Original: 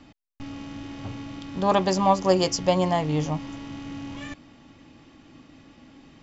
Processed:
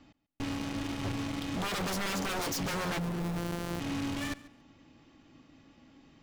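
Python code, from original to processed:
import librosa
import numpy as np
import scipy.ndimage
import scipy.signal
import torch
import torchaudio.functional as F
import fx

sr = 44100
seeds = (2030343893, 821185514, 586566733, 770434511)

p1 = fx.sample_sort(x, sr, block=256, at=(2.97, 3.79), fade=0.02)
p2 = fx.fuzz(p1, sr, gain_db=40.0, gate_db=-38.0)
p3 = p1 + F.gain(torch.from_numpy(p2), -9.5).numpy()
p4 = fx.echo_feedback(p3, sr, ms=140, feedback_pct=18, wet_db=-20.0)
p5 = 10.0 ** (-20.5 / 20.0) * (np.abs((p4 / 10.0 ** (-20.5 / 20.0) + 3.0) % 4.0 - 2.0) - 1.0)
y = F.gain(torch.from_numpy(p5), -8.0).numpy()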